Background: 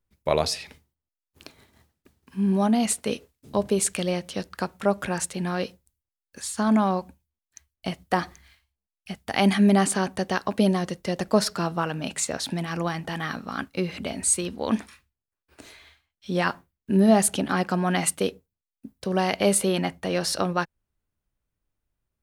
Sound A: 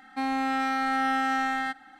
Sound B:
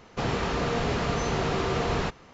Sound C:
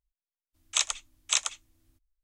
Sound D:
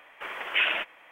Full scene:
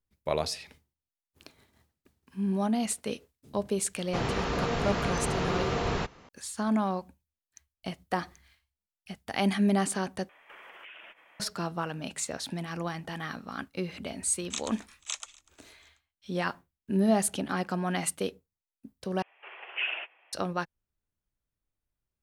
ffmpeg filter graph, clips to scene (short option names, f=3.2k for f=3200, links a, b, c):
-filter_complex "[4:a]asplit=2[a][b];[0:a]volume=-6.5dB[c];[a]acompressor=threshold=-41dB:ratio=6:attack=3.2:release=140:knee=1:detection=peak[d];[3:a]aecho=1:1:244|488|732|976:0.0708|0.0404|0.023|0.0131[e];[b]highpass=f=330:w=0.5412,highpass=f=330:w=1.3066,equalizer=f=390:t=q:w=4:g=5,equalizer=f=760:t=q:w=4:g=7,equalizer=f=2.7k:t=q:w=4:g=10,lowpass=f=3.5k:w=0.5412,lowpass=f=3.5k:w=1.3066[f];[c]asplit=3[g][h][i];[g]atrim=end=10.294[j];[d]atrim=end=1.11,asetpts=PTS-STARTPTS,volume=-5.5dB[k];[h]atrim=start=11.396:end=19.224[l];[f]atrim=end=1.11,asetpts=PTS-STARTPTS,volume=-13dB[m];[i]atrim=start=20.326[n];[2:a]atrim=end=2.33,asetpts=PTS-STARTPTS,volume=-2.5dB,afade=t=in:d=0.004:c=hsin,afade=t=out:st=2.326:d=0.004:c=hsin,adelay=3960[o];[e]atrim=end=2.23,asetpts=PTS-STARTPTS,volume=-10dB,afade=t=in:d=0.004:c=hsin,afade=t=out:st=2.226:d=0.004:c=hsin,adelay=13770[p];[j][k]acrossfade=d=0.004:c1=hsin:c2=hsin[q];[q][l]acrossfade=d=0.004:c1=hsin:c2=hsin[r];[r][m]acrossfade=d=0.004:c1=hsin:c2=hsin[s];[s][n]acrossfade=d=0.004:c1=hsin:c2=hsin[t];[t][o][p]amix=inputs=3:normalize=0"